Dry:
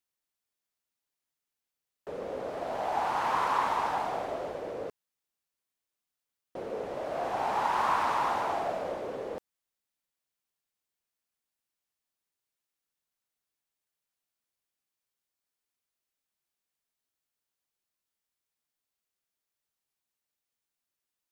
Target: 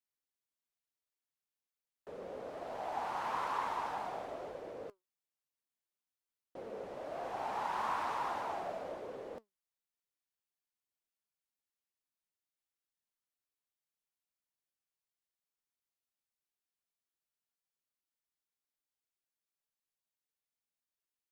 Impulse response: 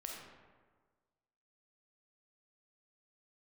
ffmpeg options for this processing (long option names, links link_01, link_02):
-af "flanger=delay=1.8:depth=3.8:regen=82:speed=1.1:shape=triangular,volume=-4dB"